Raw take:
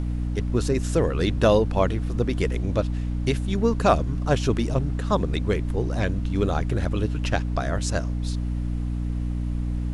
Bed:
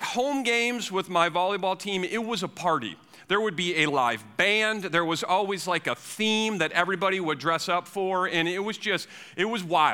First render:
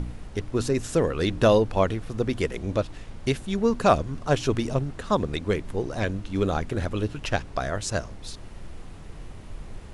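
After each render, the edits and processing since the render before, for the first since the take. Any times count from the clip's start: de-hum 60 Hz, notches 5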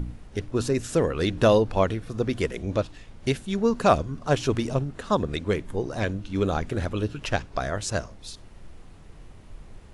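noise print and reduce 6 dB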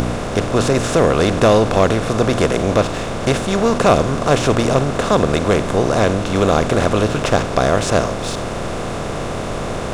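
per-bin compression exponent 0.4; sample leveller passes 1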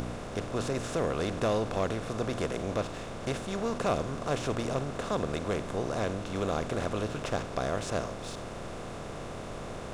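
gain -16 dB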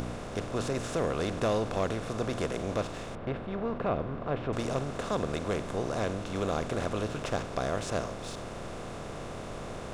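3.15–4.53 air absorption 440 m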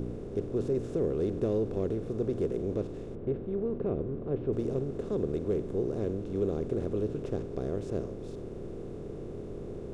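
EQ curve 260 Hz 0 dB, 400 Hz +7 dB, 630 Hz -11 dB, 1100 Hz -17 dB

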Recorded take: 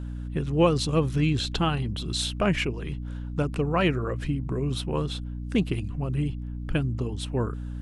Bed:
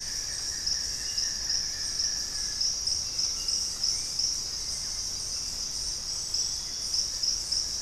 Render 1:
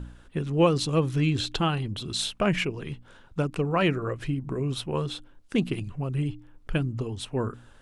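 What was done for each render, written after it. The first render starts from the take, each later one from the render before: de-hum 60 Hz, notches 5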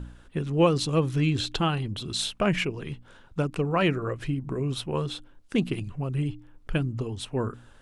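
nothing audible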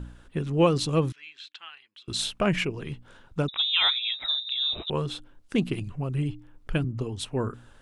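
1.12–2.08 ladder band-pass 2600 Hz, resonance 25%; 3.48–4.9 inverted band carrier 3800 Hz; 6.84–7.24 three-band expander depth 40%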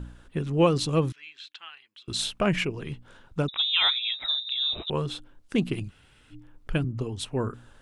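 5.89–6.33 room tone, crossfade 0.06 s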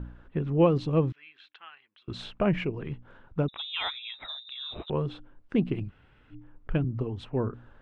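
LPF 1900 Hz 12 dB/oct; dynamic EQ 1400 Hz, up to -5 dB, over -44 dBFS, Q 1.3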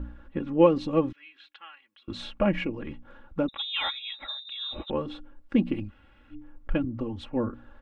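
comb 3.6 ms, depth 78%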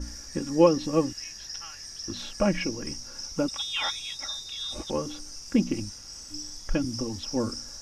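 add bed -10 dB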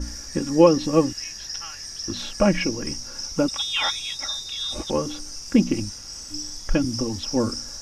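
gain +5.5 dB; limiter -3 dBFS, peak gain reduction 1.5 dB

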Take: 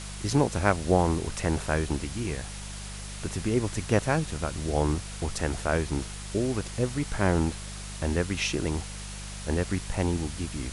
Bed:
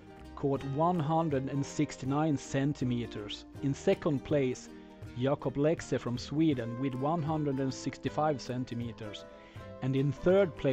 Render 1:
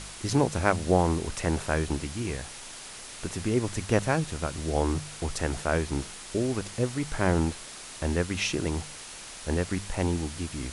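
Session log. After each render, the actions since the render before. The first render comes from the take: de-hum 50 Hz, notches 4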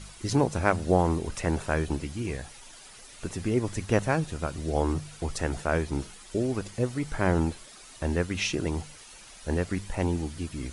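denoiser 10 dB, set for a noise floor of -43 dBFS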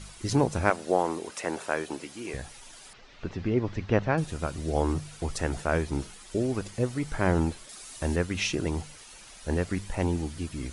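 0.7–2.34 HPF 340 Hz; 2.93–4.18 Bessel low-pass 3300 Hz, order 6; 7.69–8.16 high shelf 5600 Hz +8.5 dB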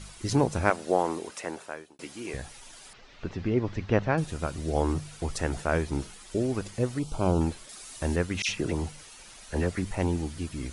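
1.2–1.99 fade out; 6.99–7.41 Butterworth band-stop 1800 Hz, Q 1.2; 8.42–9.91 dispersion lows, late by 62 ms, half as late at 2400 Hz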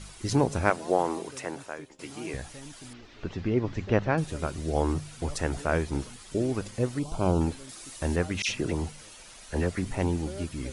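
add bed -16 dB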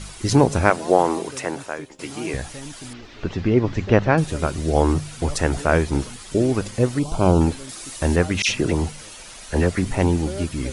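gain +8.5 dB; limiter -1 dBFS, peak gain reduction 2 dB

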